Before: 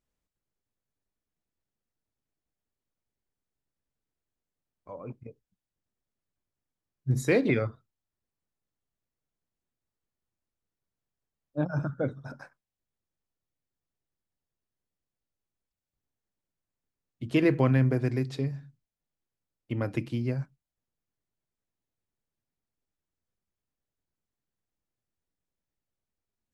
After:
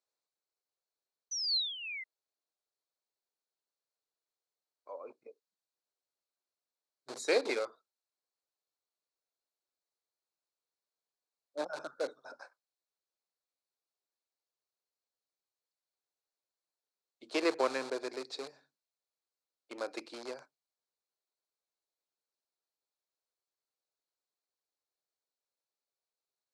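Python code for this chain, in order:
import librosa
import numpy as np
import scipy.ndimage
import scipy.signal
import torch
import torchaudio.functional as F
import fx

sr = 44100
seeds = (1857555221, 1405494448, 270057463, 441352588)

p1 = fx.spec_paint(x, sr, seeds[0], shape='fall', start_s=1.31, length_s=0.73, low_hz=2000.0, high_hz=6100.0, level_db=-35.0)
p2 = fx.cheby_harmonics(p1, sr, harmonics=(3,), levels_db=(-18,), full_scale_db=-12.5)
p3 = (np.mod(10.0 ** (28.0 / 20.0) * p2 + 1.0, 2.0) - 1.0) / 10.0 ** (28.0 / 20.0)
p4 = p2 + F.gain(torch.from_numpy(p3), -12.0).numpy()
y = fx.cabinet(p4, sr, low_hz=420.0, low_slope=24, high_hz=9000.0, hz=(1900.0, 3000.0, 4200.0), db=(-7, -8, 9))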